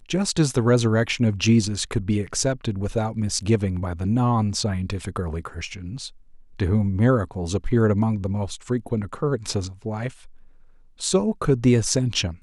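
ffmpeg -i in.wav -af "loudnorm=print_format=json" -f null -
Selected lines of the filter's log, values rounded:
"input_i" : "-23.1",
"input_tp" : "-4.3",
"input_lra" : "2.3",
"input_thresh" : "-33.7",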